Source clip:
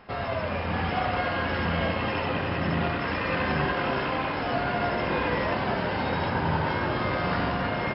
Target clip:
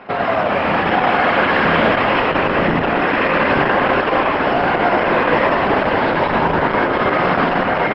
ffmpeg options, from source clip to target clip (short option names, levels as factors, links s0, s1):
-filter_complex "[0:a]acrossover=split=160 3100:gain=0.112 1 0.141[s0][s1][s2];[s0][s1][s2]amix=inputs=3:normalize=0,asplit=2[s3][s4];[s4]alimiter=level_in=1.19:limit=0.0631:level=0:latency=1:release=466,volume=0.841,volume=1.06[s5];[s3][s5]amix=inputs=2:normalize=0,asplit=7[s6][s7][s8][s9][s10][s11][s12];[s7]adelay=99,afreqshift=57,volume=0.562[s13];[s8]adelay=198,afreqshift=114,volume=0.288[s14];[s9]adelay=297,afreqshift=171,volume=0.146[s15];[s10]adelay=396,afreqshift=228,volume=0.075[s16];[s11]adelay=495,afreqshift=285,volume=0.038[s17];[s12]adelay=594,afreqshift=342,volume=0.0195[s18];[s6][s13][s14][s15][s16][s17][s18]amix=inputs=7:normalize=0,volume=2.51" -ar 48000 -c:a libopus -b:a 10k